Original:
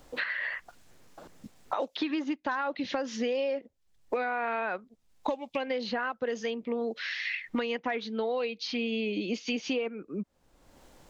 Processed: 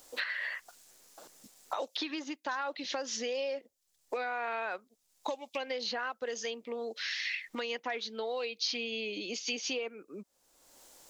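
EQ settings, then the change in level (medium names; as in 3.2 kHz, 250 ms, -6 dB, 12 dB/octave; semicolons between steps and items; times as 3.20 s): tone controls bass -14 dB, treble +14 dB; -4.0 dB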